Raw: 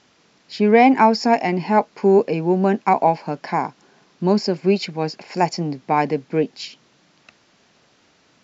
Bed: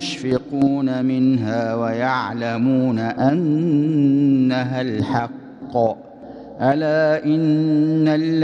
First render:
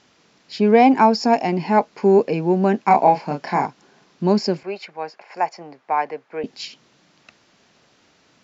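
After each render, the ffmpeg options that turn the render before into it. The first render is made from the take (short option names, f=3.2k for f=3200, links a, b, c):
-filter_complex "[0:a]asettb=1/sr,asplit=3[a][b][c];[a]atrim=end=0.584[d];[b]atrim=start=0.58:end=1.57,asetpts=PTS-STARTPTS,afade=t=in:d=0.004:c=qsin,afade=t=out:st=0.986:d=0.004:c=qsin,equalizer=f=2k:w=3.3:g=-6.5[e];[c]atrim=start=1.566[f];[d][e]acrossfade=d=0.004:c1=hsin:c2=qsin[g];[g][f]acrossfade=d=0.004:c1=qsin:c2=hsin,asettb=1/sr,asplit=3[h][i][j];[h]atrim=end=2.874[k];[i]atrim=start=2.87:end=3.66,asetpts=PTS-STARTPTS,afade=t=in:d=0.004:c=qsin,afade=t=out:st=0.786:d=0.004:c=qsin,asplit=2[l][m];[m]adelay=28,volume=-4dB[n];[l][n]amix=inputs=2:normalize=0,atrim=end_sample=34839[o];[j]atrim=start=3.656[p];[k][o]acrossfade=d=0.004:c1=hsin:c2=qsin[q];[q][p]acrossfade=d=0.004:c1=qsin:c2=hsin,asettb=1/sr,asplit=3[r][s][t];[r]atrim=end=4.634[u];[s]atrim=start=4.63:end=6.44,asetpts=PTS-STARTPTS,afade=t=in:d=0.004:c=qsin,afade=t=out:st=1.806:d=0.004:c=qsin,acrossover=split=530 2200:gain=0.0708 1 0.2[v][w][x];[v][w][x]amix=inputs=3:normalize=0[y];[t]atrim=start=6.436[z];[u][y]acrossfade=d=0.004:c1=hsin:c2=qsin[aa];[aa][z]acrossfade=d=0.004:c1=qsin:c2=hsin"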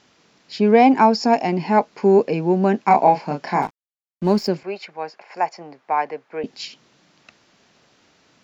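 -filter_complex "[0:a]asettb=1/sr,asplit=3[a][b][c];[a]atrim=end=3.624[d];[b]atrim=start=3.62:end=4.48,asetpts=PTS-STARTPTS,afade=t=in:d=0.004:c=qsin,afade=t=out:st=0.856:d=0.004:c=qsin,aeval=exprs='sgn(val(0))*max(abs(val(0))-0.0112,0)':c=same[e];[c]atrim=start=4.476[f];[d][e]acrossfade=d=0.004:c1=hsin:c2=qsin[g];[g][f]acrossfade=d=0.004:c1=qsin:c2=hsin"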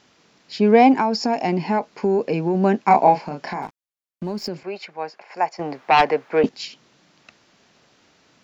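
-filter_complex "[0:a]asettb=1/sr,asplit=3[a][b][c];[a]atrim=end=0.954[d];[b]atrim=start=0.95:end=2.55,asetpts=PTS-STARTPTS,afade=t=in:d=0.004:c=qsin,afade=t=out:st=1.596:d=0.004:c=qsin,acompressor=threshold=-15dB:ratio=6:attack=3.2:release=140:knee=1:detection=peak[e];[c]atrim=start=2.546[f];[d][e]acrossfade=d=0.004:c1=hsin:c2=qsin[g];[g][f]acrossfade=d=0.004:c1=qsin:c2=hsin,asettb=1/sr,asplit=3[h][i][j];[h]atrim=end=3.224[k];[i]atrim=start=3.22:end=4.86,asetpts=PTS-STARTPTS,afade=t=in:d=0.004:c=qsin,afade=t=out:st=1.636:d=0.004:c=qsin,acompressor=threshold=-24dB:ratio=5:attack=3.2:release=140:knee=1:detection=peak[l];[j]atrim=start=4.856[m];[k][l]acrossfade=d=0.004:c1=hsin:c2=qsin[n];[n][m]acrossfade=d=0.004:c1=qsin:c2=hsin,asettb=1/sr,asplit=3[o][p][q];[o]atrim=end=5.594[r];[p]atrim=start=5.59:end=6.49,asetpts=PTS-STARTPTS,afade=t=in:d=0.004:c=qsin,afade=t=out:st=0.896:d=0.004:c=qsin,aeval=exprs='0.355*sin(PI/2*2.24*val(0)/0.355)':c=same[s];[q]atrim=start=6.486[t];[r][s]acrossfade=d=0.004:c1=hsin:c2=qsin[u];[u][t]acrossfade=d=0.004:c1=qsin:c2=hsin"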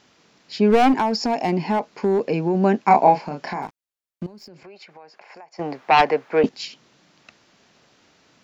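-filter_complex "[0:a]asettb=1/sr,asplit=3[a][b][c];[a]atrim=end=0.704[d];[b]atrim=start=0.7:end=2.21,asetpts=PTS-STARTPTS,afade=t=in:d=0.004:c=qsin,afade=t=out:st=1.506:d=0.004:c=qsin,aeval=exprs='clip(val(0),-1,0.178)':c=same[e];[c]atrim=start=2.206[f];[d][e]acrossfade=d=0.004:c1=hsin:c2=qsin[g];[g][f]acrossfade=d=0.004:c1=qsin:c2=hsin,asettb=1/sr,asplit=3[h][i][j];[h]atrim=end=4.264[k];[i]atrim=start=4.26:end=5.59,asetpts=PTS-STARTPTS,afade=t=in:d=0.004:c=qsin,afade=t=out:st=1.326:d=0.004:c=qsin,acompressor=threshold=-40dB:ratio=10:attack=3.2:release=140:knee=1:detection=peak[l];[j]atrim=start=5.586[m];[k][l]acrossfade=d=0.004:c1=hsin:c2=qsin[n];[n][m]acrossfade=d=0.004:c1=qsin:c2=hsin"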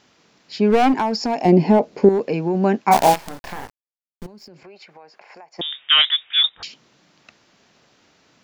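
-filter_complex "[0:a]asettb=1/sr,asplit=3[a][b][c];[a]atrim=end=1.454[d];[b]atrim=start=1.45:end=2.09,asetpts=PTS-STARTPTS,afade=t=in:d=0.004:c=qsin,afade=t=out:st=0.636:d=0.004:c=qsin,lowshelf=f=760:t=q:w=1.5:g=8.5[e];[c]atrim=start=2.086[f];[d][e]acrossfade=d=0.004:c1=hsin:c2=qsin[g];[g][f]acrossfade=d=0.004:c1=qsin:c2=hsin,asplit=3[h][i][j];[h]afade=t=out:st=2.91:d=0.02[k];[i]acrusher=bits=4:dc=4:mix=0:aa=0.000001,afade=t=in:st=2.91:d=0.02,afade=t=out:st=4.25:d=0.02[l];[j]afade=t=in:st=4.25:d=0.02[m];[k][l][m]amix=inputs=3:normalize=0,asettb=1/sr,asplit=3[n][o][p];[n]atrim=end=5.614[q];[o]atrim=start=5.61:end=6.63,asetpts=PTS-STARTPTS,afade=t=in:d=0.004:c=qsin,afade=t=out:st=1.016:d=0.004:c=qsin,lowpass=f=3.3k:t=q:w=0.5098,lowpass=f=3.3k:t=q:w=0.6013,lowpass=f=3.3k:t=q:w=0.9,lowpass=f=3.3k:t=q:w=2.563,afreqshift=-3900[r];[p]atrim=start=6.626[s];[q][r]acrossfade=d=0.004:c1=hsin:c2=qsin[t];[t][s]acrossfade=d=0.004:c1=qsin:c2=hsin"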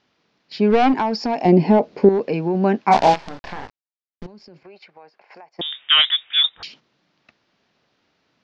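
-af "lowpass=f=5.2k:w=0.5412,lowpass=f=5.2k:w=1.3066,agate=range=-9dB:threshold=-46dB:ratio=16:detection=peak"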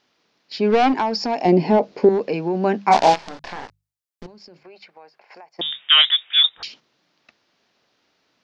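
-af "bass=f=250:g=-5,treble=f=4k:g=5,bandreject=f=50:t=h:w=6,bandreject=f=100:t=h:w=6,bandreject=f=150:t=h:w=6,bandreject=f=200:t=h:w=6"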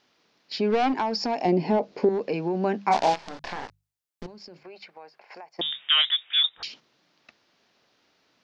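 -af "acompressor=threshold=-31dB:ratio=1.5"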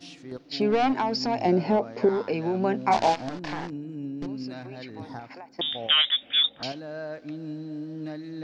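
-filter_complex "[1:a]volume=-19dB[a];[0:a][a]amix=inputs=2:normalize=0"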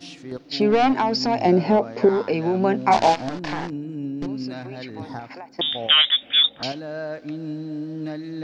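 -af "volume=5dB"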